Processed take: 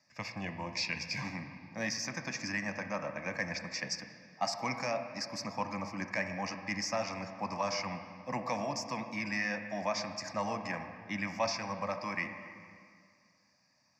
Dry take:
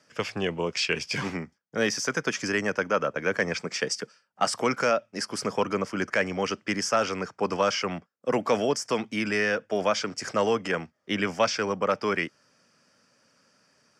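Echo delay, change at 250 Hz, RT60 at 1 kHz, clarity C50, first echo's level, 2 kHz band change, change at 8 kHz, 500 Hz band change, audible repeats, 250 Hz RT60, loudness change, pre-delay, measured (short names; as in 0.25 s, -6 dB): none, -9.0 dB, 2.1 s, 7.5 dB, none, -8.0 dB, -8.0 dB, -12.5 dB, none, 2.2 s, -9.0 dB, 7 ms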